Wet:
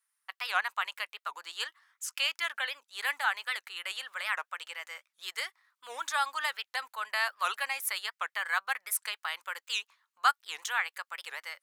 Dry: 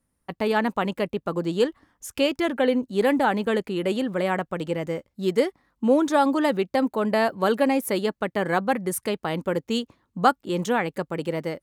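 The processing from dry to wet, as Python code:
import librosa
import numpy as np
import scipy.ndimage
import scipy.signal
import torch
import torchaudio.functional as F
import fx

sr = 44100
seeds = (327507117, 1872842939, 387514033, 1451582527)

y = scipy.signal.sosfilt(scipy.signal.butter(4, 1200.0, 'highpass', fs=sr, output='sos'), x)
y = fx.record_warp(y, sr, rpm=78.0, depth_cents=250.0)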